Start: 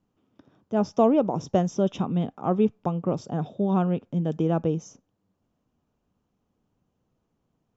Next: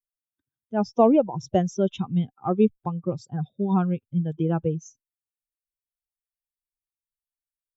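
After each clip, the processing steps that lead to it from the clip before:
spectral dynamics exaggerated over time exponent 2
level +4.5 dB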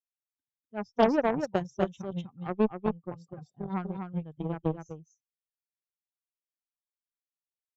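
single-tap delay 248 ms −3 dB
harmonic generator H 7 −19 dB, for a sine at −3.5 dBFS
level −5 dB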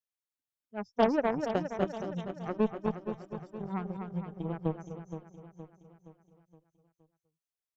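repeating echo 469 ms, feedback 48%, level −10 dB
level −2.5 dB

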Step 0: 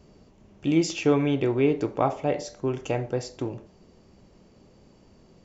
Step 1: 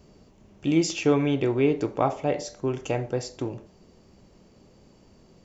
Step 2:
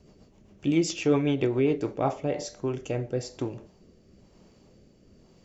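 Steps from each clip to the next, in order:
high-shelf EQ 6,700 Hz +5 dB
rotating-speaker cabinet horn 7.5 Hz, later 1 Hz, at 0:01.54

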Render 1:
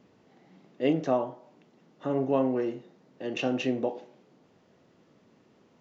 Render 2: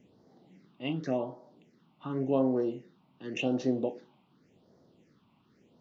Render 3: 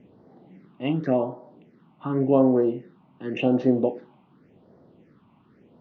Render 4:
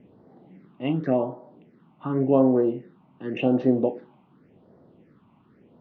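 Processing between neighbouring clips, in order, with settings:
all-pass phaser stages 6, 0.89 Hz, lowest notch 450–2,600 Hz; level −1 dB
low-pass filter 2,100 Hz 12 dB per octave; level +8.5 dB
high-frequency loss of the air 110 metres

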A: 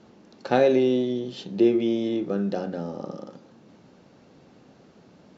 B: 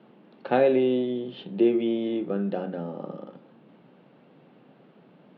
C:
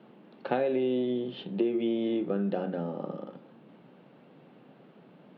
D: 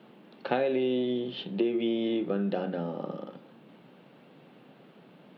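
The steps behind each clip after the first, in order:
elliptic band-pass filter 140–3,200 Hz, stop band 40 dB; level −1 dB
downward compressor 6 to 1, threshold −24 dBFS, peak gain reduction 8.5 dB
high-shelf EQ 2,400 Hz +8.5 dB

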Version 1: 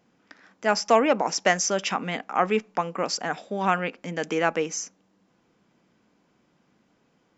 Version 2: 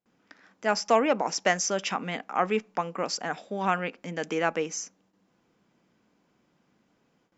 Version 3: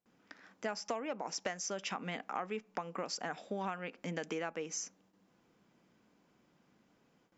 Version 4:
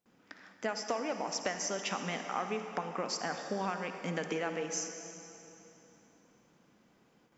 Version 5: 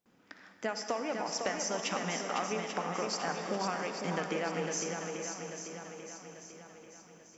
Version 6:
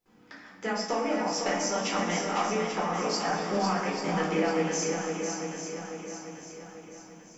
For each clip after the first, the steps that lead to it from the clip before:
noise gate with hold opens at −57 dBFS; level −3 dB
downward compressor 10 to 1, threshold −33 dBFS, peak gain reduction 17.5 dB; level −1.5 dB
convolution reverb RT60 3.2 s, pre-delay 43 ms, DRR 6 dB; level +3 dB
feedback echo with a long and a short gap by turns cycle 840 ms, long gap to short 1.5 to 1, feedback 43%, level −5.5 dB
rectangular room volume 400 cubic metres, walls furnished, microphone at 4.1 metres; level −1.5 dB

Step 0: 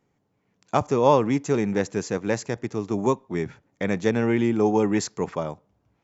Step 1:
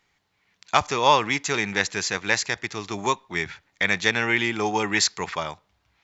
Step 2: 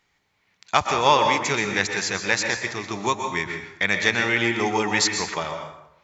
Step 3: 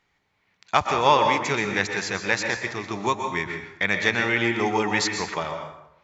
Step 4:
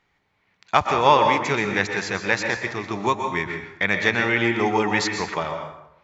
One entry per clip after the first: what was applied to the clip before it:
octave-band graphic EQ 125/250/500/2,000/4,000 Hz −10/−11/−9/+6/+10 dB; level +5 dB
dense smooth reverb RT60 0.82 s, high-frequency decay 0.65×, pre-delay 110 ms, DRR 4.5 dB
high-shelf EQ 4,700 Hz −9 dB
high-shelf EQ 4,900 Hz −7.5 dB; level +2.5 dB

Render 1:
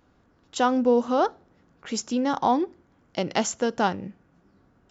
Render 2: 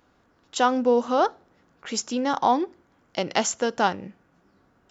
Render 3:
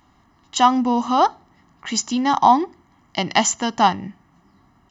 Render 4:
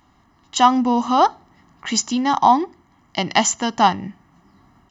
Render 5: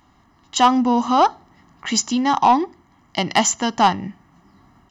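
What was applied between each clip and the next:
low-shelf EQ 330 Hz −8 dB; level +3 dB
comb filter 1 ms, depth 81%; level +4 dB
automatic gain control gain up to 4 dB
soft clipping −5.5 dBFS, distortion −19 dB; level +1 dB

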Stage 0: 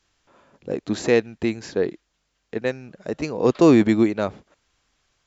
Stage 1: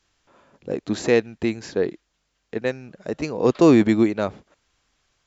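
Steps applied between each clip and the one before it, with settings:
no processing that can be heard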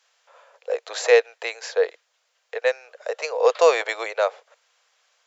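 Chebyshev high-pass filter 470 Hz, order 6
level +5 dB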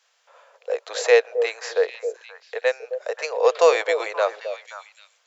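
echo through a band-pass that steps 265 ms, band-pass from 470 Hz, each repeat 1.4 octaves, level −7 dB

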